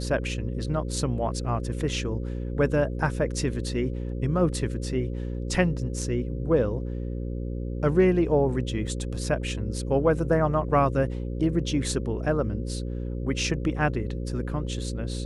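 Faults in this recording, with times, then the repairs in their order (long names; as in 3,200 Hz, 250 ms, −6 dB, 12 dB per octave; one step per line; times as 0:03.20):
mains buzz 60 Hz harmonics 9 −31 dBFS
0:08.87: drop-out 4 ms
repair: hum removal 60 Hz, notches 9
repair the gap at 0:08.87, 4 ms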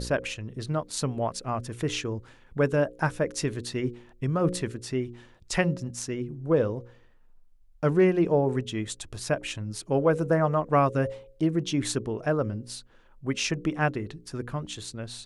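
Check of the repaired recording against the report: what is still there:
none of them is left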